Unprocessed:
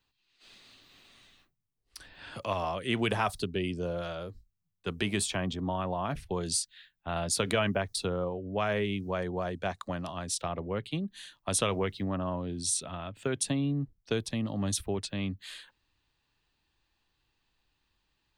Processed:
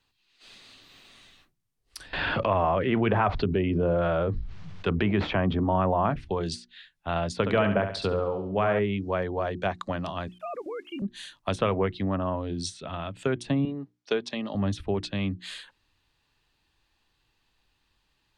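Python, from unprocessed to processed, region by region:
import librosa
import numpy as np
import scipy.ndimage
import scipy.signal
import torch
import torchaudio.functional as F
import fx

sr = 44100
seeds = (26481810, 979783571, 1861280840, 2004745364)

y = fx.chain(x, sr, fx.median_filter(points=5),
    fx.air_absorb(metres=150.0),
    fx.env_flatten(amount_pct=70), at=(2.13, 6.1))
y = fx.chain(y, sr, fx.lowpass(hz=7600.0, slope=12),
    fx.room_flutter(wall_m=11.9, rt60_s=0.51), at=(7.37, 8.79))
y = fx.chain(y, sr, fx.sine_speech(),
    fx.level_steps(step_db=13),
    fx.quant_dither(seeds[0], bits=12, dither='none'), at=(10.28, 11.02))
y = fx.chain(y, sr, fx.bandpass_edges(low_hz=320.0, high_hz=6400.0),
    fx.comb(ms=4.9, depth=0.31), at=(13.65, 14.55))
y = fx.env_lowpass_down(y, sr, base_hz=1900.0, full_db=-26.0)
y = fx.hum_notches(y, sr, base_hz=60, count=6)
y = y * 10.0 ** (5.0 / 20.0)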